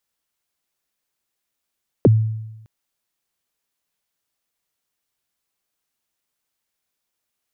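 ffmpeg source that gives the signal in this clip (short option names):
-f lavfi -i "aevalsrc='0.473*pow(10,-3*t/0.99)*sin(2*PI*(560*0.028/log(110/560)*(exp(log(110/560)*min(t,0.028)/0.028)-1)+110*max(t-0.028,0)))':d=0.61:s=44100"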